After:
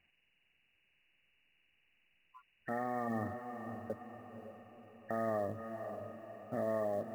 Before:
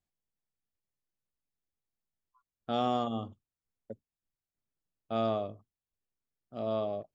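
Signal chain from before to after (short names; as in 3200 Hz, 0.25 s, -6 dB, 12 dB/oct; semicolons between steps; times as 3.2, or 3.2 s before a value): nonlinear frequency compression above 1500 Hz 4:1; compressor 4:1, threshold -42 dBFS, peak gain reduction 14.5 dB; low shelf 120 Hz -5 dB; short-mantissa float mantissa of 4-bit; limiter -40 dBFS, peak gain reduction 11 dB; diffused feedback echo 0.539 s, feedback 48%, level -7.5 dB; gain +12 dB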